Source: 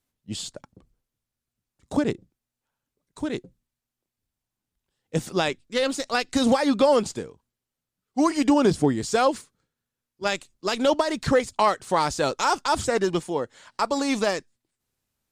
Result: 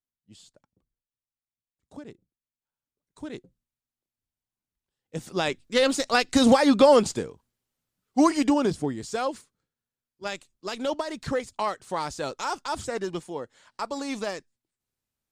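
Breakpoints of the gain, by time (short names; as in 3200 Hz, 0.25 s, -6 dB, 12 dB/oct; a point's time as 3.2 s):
2.11 s -19 dB
3.27 s -8.5 dB
5.18 s -8.5 dB
5.63 s +2.5 dB
8.18 s +2.5 dB
8.82 s -7.5 dB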